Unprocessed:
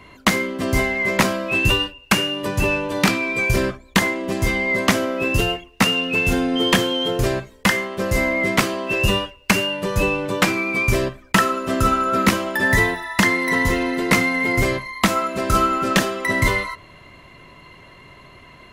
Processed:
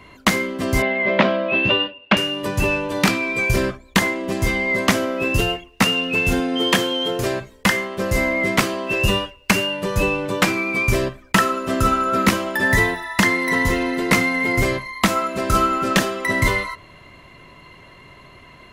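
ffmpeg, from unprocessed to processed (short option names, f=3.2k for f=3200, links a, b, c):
-filter_complex "[0:a]asettb=1/sr,asplit=3[a][b][c];[a]atrim=end=0.824[d];[b]atrim=start=0.82:end=2.17,asetpts=PTS-STARTPTS,afade=t=in:d=0.004:c=qsin,afade=t=out:st=1.346:d=0.004:c=qsin,highpass=170,equalizer=f=220:t=q:w=4:g=5,equalizer=f=600:t=q:w=4:g=9,equalizer=f=3.3k:t=q:w=4:g=4,lowpass=f=3.6k:w=0.5412,lowpass=f=3.6k:w=1.3066[e];[c]atrim=start=2.166[f];[d][e]acrossfade=d=0.004:c1=hsin:c2=qsin[g];[g][f]acrossfade=d=0.004:c1=qsin:c2=hsin,asettb=1/sr,asplit=3[h][i][j];[h]atrim=end=6.404[k];[i]atrim=start=6.4:end=7.41,asetpts=PTS-STARTPTS,afade=t=in:d=0.004:c=qsin,afade=t=out:st=1.006:d=0.004:c=qsin,highpass=f=190:p=1[l];[j]atrim=start=7.406[m];[k][l]acrossfade=d=0.004:c1=hsin:c2=qsin[n];[n][m]acrossfade=d=0.004:c1=qsin:c2=hsin"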